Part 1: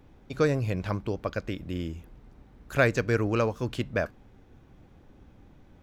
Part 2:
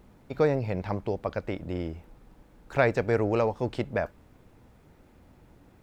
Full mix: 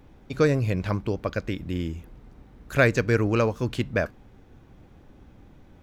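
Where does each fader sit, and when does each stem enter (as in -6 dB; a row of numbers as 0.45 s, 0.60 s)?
+3.0 dB, -12.5 dB; 0.00 s, 0.00 s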